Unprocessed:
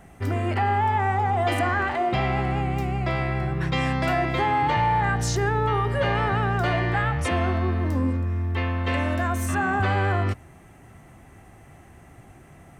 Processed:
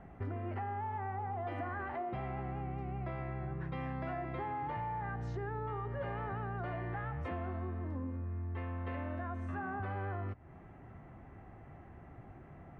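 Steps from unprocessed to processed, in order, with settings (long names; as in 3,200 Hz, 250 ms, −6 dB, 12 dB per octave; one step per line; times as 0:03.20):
low-pass filter 1,600 Hz 12 dB per octave
downward compressor, threshold −33 dBFS, peak gain reduction 13 dB
level −4 dB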